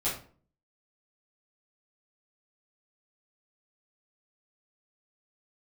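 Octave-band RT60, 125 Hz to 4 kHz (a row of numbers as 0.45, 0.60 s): 0.65, 0.55, 0.50, 0.40, 0.35, 0.30 s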